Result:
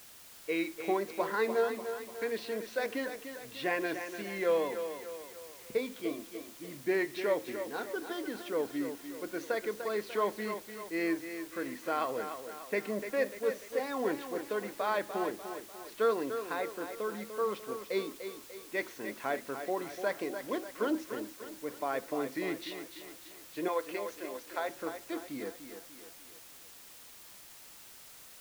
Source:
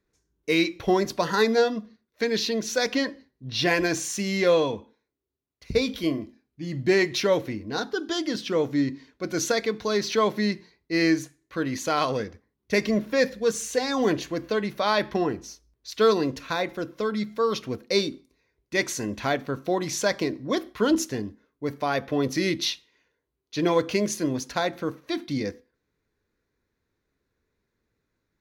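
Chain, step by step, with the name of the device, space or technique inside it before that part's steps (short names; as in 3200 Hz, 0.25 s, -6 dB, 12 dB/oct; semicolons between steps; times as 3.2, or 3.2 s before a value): 23.68–24.69 HPF 480 Hz 12 dB/oct; wax cylinder (BPF 320–2200 Hz; wow and flutter; white noise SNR 17 dB); thinning echo 0.296 s, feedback 50%, high-pass 170 Hz, level -8.5 dB; gain -7.5 dB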